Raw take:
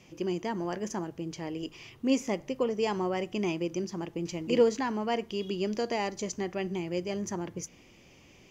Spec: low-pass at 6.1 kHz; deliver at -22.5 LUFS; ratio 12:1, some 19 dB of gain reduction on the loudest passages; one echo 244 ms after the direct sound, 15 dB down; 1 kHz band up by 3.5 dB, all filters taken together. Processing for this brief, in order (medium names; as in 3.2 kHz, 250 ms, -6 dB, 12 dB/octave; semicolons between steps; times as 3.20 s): low-pass 6.1 kHz; peaking EQ 1 kHz +4.5 dB; compression 12:1, threshold -36 dBFS; delay 244 ms -15 dB; trim +18.5 dB